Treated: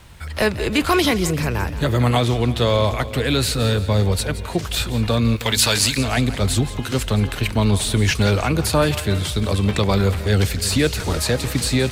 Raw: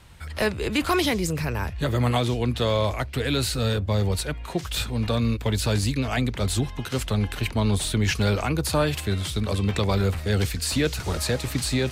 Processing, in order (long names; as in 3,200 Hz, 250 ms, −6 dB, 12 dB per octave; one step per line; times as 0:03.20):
background noise pink −63 dBFS
0:05.36–0:05.98: tilt shelving filter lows −9 dB, about 660 Hz
echo with a time of its own for lows and highs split 520 Hz, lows 314 ms, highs 172 ms, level −14.5 dB
level +5 dB